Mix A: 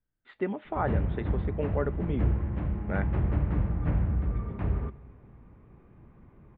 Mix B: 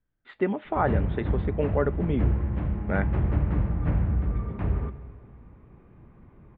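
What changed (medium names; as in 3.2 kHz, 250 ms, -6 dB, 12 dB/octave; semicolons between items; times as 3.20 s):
speech +5.0 dB; background: send +8.5 dB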